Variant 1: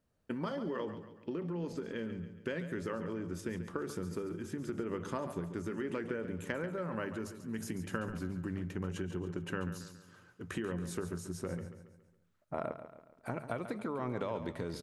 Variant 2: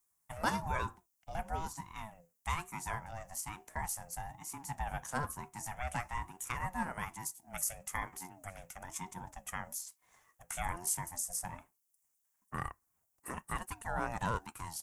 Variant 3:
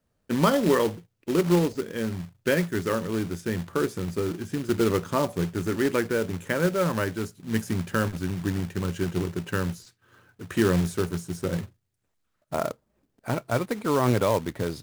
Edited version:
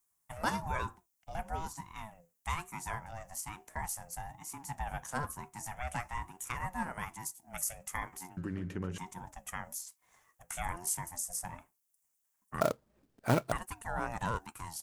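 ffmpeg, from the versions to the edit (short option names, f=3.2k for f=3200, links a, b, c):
-filter_complex "[1:a]asplit=3[a][b][c];[a]atrim=end=8.372[d];[0:a]atrim=start=8.368:end=8.982[e];[b]atrim=start=8.978:end=12.612[f];[2:a]atrim=start=12.608:end=13.522[g];[c]atrim=start=13.518[h];[d][e]acrossfade=d=0.004:c1=hsin:c2=hsin[i];[i][f]acrossfade=d=0.004:c1=hsin:c2=hsin[j];[j][g]acrossfade=d=0.004:c1=hsin:c2=hsin[k];[k][h]acrossfade=d=0.004:c1=hsin:c2=hsin"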